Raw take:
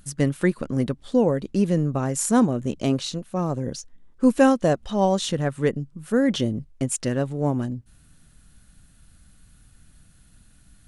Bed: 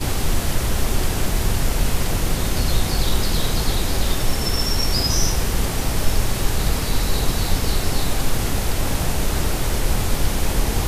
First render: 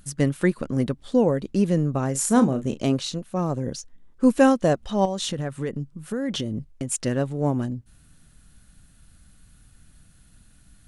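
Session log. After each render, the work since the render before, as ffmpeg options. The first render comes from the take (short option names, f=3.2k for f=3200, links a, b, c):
-filter_complex "[0:a]asettb=1/sr,asplit=3[a][b][c];[a]atrim=end=2.114[d];[b]atrim=start=2.11:end=2.84,asetpts=PTS-STARTPTS,afade=t=in:d=0.004:c=qsin,afade=t=out:st=0.726:d=0.004:c=qsin,asplit=2[e][f];[f]adelay=37,volume=-11dB[g];[e][g]amix=inputs=2:normalize=0,atrim=end_sample=32193[h];[c]atrim=start=2.836[i];[d][h]acrossfade=d=0.004:c1=hsin:c2=qsin[j];[j][i]acrossfade=d=0.004:c1=qsin:c2=hsin,asettb=1/sr,asplit=3[k][l][m];[k]atrim=end=5.054[n];[l]atrim=start=5.05:end=6.89,asetpts=PTS-STARTPTS,afade=t=in:d=0.004:c=qsin,afade=t=out:st=1.836:d=0.004:c=qsin,acompressor=threshold=-23dB:ratio=6:attack=3.2:release=140:knee=1:detection=peak[o];[m]atrim=start=6.886[p];[n][o]acrossfade=d=0.004:c1=hsin:c2=qsin[q];[q][p]acrossfade=d=0.004:c1=qsin:c2=hsin"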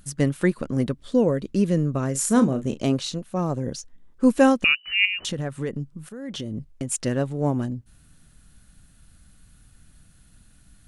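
-filter_complex "[0:a]asettb=1/sr,asplit=3[a][b][c];[a]atrim=end=0.904[d];[b]atrim=start=0.9:end=2.51,asetpts=PTS-STARTPTS,afade=t=in:d=0.004:c=qsin,afade=t=out:st=1.606:d=0.004:c=qsin,equalizer=f=810:t=o:w=0.27:g=-9.5[e];[c]atrim=start=2.506[f];[d][e]acrossfade=d=0.004:c1=hsin:c2=qsin[g];[g][f]acrossfade=d=0.004:c1=qsin:c2=hsin,asettb=1/sr,asplit=3[h][i][j];[h]atrim=end=4.644[k];[i]atrim=start=4.64:end=5.25,asetpts=PTS-STARTPTS,afade=t=in:d=0.004:c=qsin,afade=t=out:st=0.606:d=0.004:c=qsin,lowpass=f=2.6k:t=q:w=0.5098,lowpass=f=2.6k:t=q:w=0.6013,lowpass=f=2.6k:t=q:w=0.9,lowpass=f=2.6k:t=q:w=2.563,afreqshift=-3000[l];[j]atrim=start=5.246[m];[k][l]acrossfade=d=0.004:c1=hsin:c2=qsin[n];[n][m]acrossfade=d=0.004:c1=qsin:c2=hsin,asplit=2[o][p];[o]atrim=end=6.09,asetpts=PTS-STARTPTS,afade=t=out:st=6.086:d=0.004:c=hsin:silence=0.237137[q];[p]atrim=start=6.09,asetpts=PTS-STARTPTS,afade=t=in:d=0.62:silence=0.237137[r];[q][r]concat=n=2:v=0:a=1"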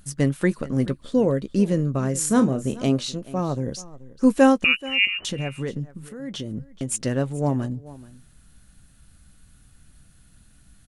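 -filter_complex "[0:a]asplit=2[a][b];[b]adelay=15,volume=-14dB[c];[a][c]amix=inputs=2:normalize=0,aecho=1:1:431:0.112"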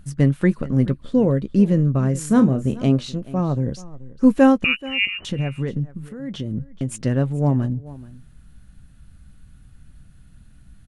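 -af "bass=f=250:g=7,treble=f=4k:g=-8"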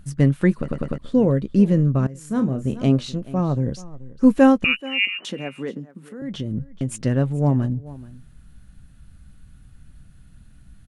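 -filter_complex "[0:a]asettb=1/sr,asplit=3[a][b][c];[a]atrim=end=4.804[d];[b]atrim=start=4.8:end=6.22,asetpts=PTS-STARTPTS,afade=t=in:d=0.004:c=qsin,afade=t=out:st=1.416:d=0.004:c=qsin,highpass=f=220:w=0.5412,highpass=f=220:w=1.3066[e];[c]atrim=start=6.216[f];[d][e]acrossfade=d=0.004:c1=hsin:c2=qsin[g];[g][f]acrossfade=d=0.004:c1=qsin:c2=hsin,asplit=6[h][i][j][k][l][m];[h]atrim=end=0.682[n];[i]atrim=start=0.578:end=0.682[o];[j]atrim=start=0.578:end=0.682[p];[k]atrim=start=0.578:end=0.682[q];[l]atrim=start=0.978:end=2.07,asetpts=PTS-STARTPTS,afade=t=out:st=1.088:d=0.004:c=hsin:silence=0.112202[r];[m]atrim=start=2.07,asetpts=PTS-STARTPTS,afade=t=in:d=0.81:silence=0.112202[s];[n][o]acrossfade=d=0.004:c1=hsin:c2=hsin[t];[t][p]acrossfade=d=0.004:c1=hsin:c2=hsin[u];[u][q]acrossfade=d=0.004:c1=hsin:c2=hsin[v];[r][s]concat=n=2:v=0:a=1[w];[v][w]acrossfade=d=0.004:c1=hsin:c2=hsin"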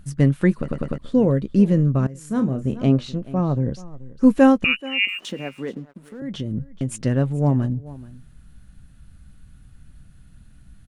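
-filter_complex "[0:a]asettb=1/sr,asplit=3[a][b][c];[a]atrim=end=2.604[d];[b]atrim=start=2.6:end=3.88,asetpts=PTS-STARTPTS,afade=t=in:d=0.004:c=qsin,afade=t=out:st=1.276:d=0.004:c=qsin,aemphasis=mode=reproduction:type=cd[e];[c]atrim=start=3.876[f];[d][e]acrossfade=d=0.004:c1=hsin:c2=qsin[g];[g][f]acrossfade=d=0.004:c1=qsin:c2=hsin,asettb=1/sr,asplit=3[h][i][j];[h]atrim=end=5.084[k];[i]atrim=start=5.08:end=6.2,asetpts=PTS-STARTPTS,afade=t=in:d=0.004:c=qsin,afade=t=out:st=1.116:d=0.004:c=qsin,aeval=exprs='sgn(val(0))*max(abs(val(0))-0.00224,0)':c=same[l];[j]atrim=start=6.196[m];[k][l]acrossfade=d=0.004:c1=hsin:c2=qsin[n];[n][m]acrossfade=d=0.004:c1=qsin:c2=hsin"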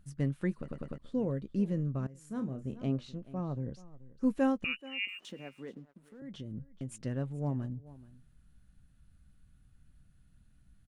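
-af "volume=-15dB"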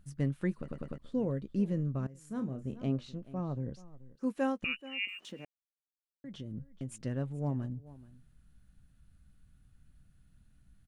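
-filter_complex "[0:a]asettb=1/sr,asplit=3[a][b][c];[a]atrim=end=4.154[d];[b]atrim=start=4.15:end=4.63,asetpts=PTS-STARTPTS,afade=t=in:d=0.004:c=qsin,afade=t=out:st=0.476:d=0.004:c=qsin,highpass=f=360:p=1[e];[c]atrim=start=4.626[f];[d][e]acrossfade=d=0.004:c1=hsin:c2=qsin[g];[g][f]acrossfade=d=0.004:c1=qsin:c2=hsin,asplit=3[h][i][j];[h]atrim=end=5.45,asetpts=PTS-STARTPTS,afade=t=out:st=5.446:d=0.004:c=hsin[k];[i]atrim=start=5.45:end=6.24,asetpts=PTS-STARTPTS,volume=0[l];[j]atrim=start=6.24,asetpts=PTS-STARTPTS,afade=t=in:d=0.004:c=hsin[m];[k][l][m]concat=n=3:v=0:a=1"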